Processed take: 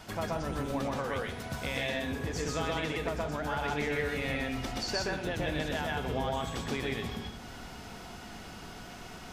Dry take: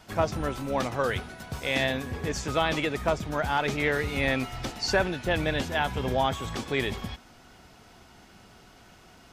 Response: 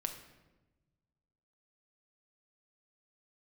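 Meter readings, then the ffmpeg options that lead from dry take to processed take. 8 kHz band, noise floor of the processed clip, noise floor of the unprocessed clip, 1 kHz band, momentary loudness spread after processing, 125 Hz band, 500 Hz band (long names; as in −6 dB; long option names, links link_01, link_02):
−3.0 dB, −46 dBFS, −54 dBFS, −6.0 dB, 13 LU, −4.0 dB, −5.5 dB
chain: -filter_complex "[0:a]acompressor=threshold=-44dB:ratio=2.5,asplit=2[link_01][link_02];[1:a]atrim=start_sample=2205,asetrate=61740,aresample=44100,adelay=126[link_03];[link_02][link_03]afir=irnorm=-1:irlink=0,volume=4dB[link_04];[link_01][link_04]amix=inputs=2:normalize=0,volume=4dB"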